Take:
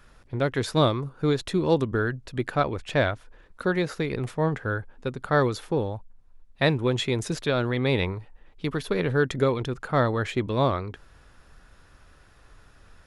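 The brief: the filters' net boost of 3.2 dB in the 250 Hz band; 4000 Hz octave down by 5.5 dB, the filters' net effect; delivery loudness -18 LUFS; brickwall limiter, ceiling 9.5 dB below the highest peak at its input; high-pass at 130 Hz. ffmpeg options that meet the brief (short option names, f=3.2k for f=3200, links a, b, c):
-af "highpass=130,equalizer=f=250:t=o:g=5,equalizer=f=4k:t=o:g=-6.5,volume=10.5dB,alimiter=limit=-5dB:level=0:latency=1"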